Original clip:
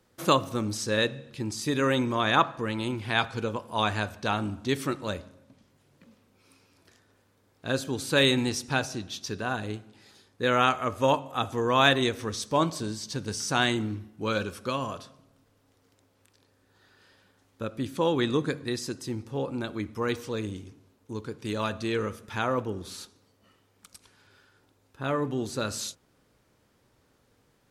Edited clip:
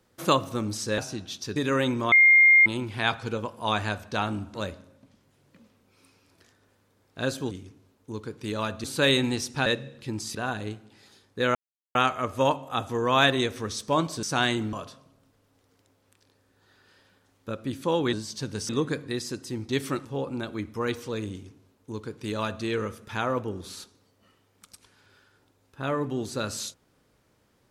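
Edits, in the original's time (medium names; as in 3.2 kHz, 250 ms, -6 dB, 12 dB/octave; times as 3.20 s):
0.98–1.67 s: swap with 8.80–9.38 s
2.23–2.77 s: bleep 2.12 kHz -12.5 dBFS
4.65–5.01 s: move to 19.26 s
10.58 s: insert silence 0.40 s
12.86–13.42 s: move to 18.26 s
13.92–14.86 s: delete
20.52–21.85 s: copy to 7.98 s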